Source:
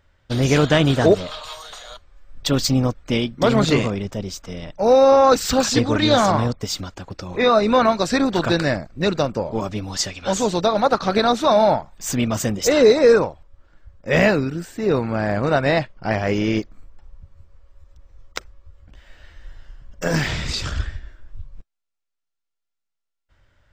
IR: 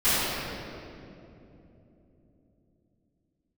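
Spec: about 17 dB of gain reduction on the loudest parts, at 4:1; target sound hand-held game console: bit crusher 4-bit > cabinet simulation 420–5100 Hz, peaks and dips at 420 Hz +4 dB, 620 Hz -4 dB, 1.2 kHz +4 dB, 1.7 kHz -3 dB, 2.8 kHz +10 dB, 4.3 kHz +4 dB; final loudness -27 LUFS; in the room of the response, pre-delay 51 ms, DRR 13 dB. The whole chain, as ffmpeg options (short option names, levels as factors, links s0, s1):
-filter_complex "[0:a]acompressor=threshold=0.0282:ratio=4,asplit=2[s0][s1];[1:a]atrim=start_sample=2205,adelay=51[s2];[s1][s2]afir=irnorm=-1:irlink=0,volume=0.0282[s3];[s0][s3]amix=inputs=2:normalize=0,acrusher=bits=3:mix=0:aa=0.000001,highpass=420,equalizer=f=420:t=q:w=4:g=4,equalizer=f=620:t=q:w=4:g=-4,equalizer=f=1200:t=q:w=4:g=4,equalizer=f=1700:t=q:w=4:g=-3,equalizer=f=2800:t=q:w=4:g=10,equalizer=f=4300:t=q:w=4:g=4,lowpass=f=5100:w=0.5412,lowpass=f=5100:w=1.3066,volume=2"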